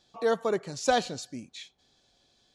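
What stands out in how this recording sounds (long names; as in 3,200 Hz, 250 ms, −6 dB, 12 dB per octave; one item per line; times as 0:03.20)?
background noise floor −69 dBFS
spectral slope −3.5 dB per octave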